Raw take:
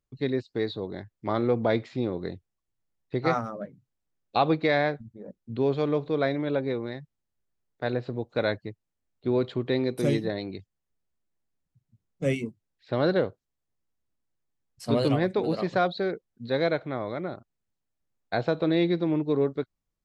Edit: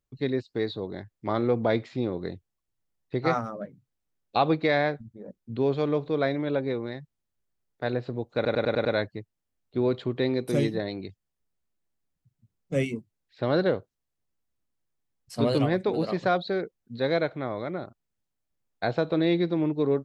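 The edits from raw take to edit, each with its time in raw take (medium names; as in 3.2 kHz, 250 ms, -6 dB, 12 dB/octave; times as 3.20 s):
8.35 s: stutter 0.10 s, 6 plays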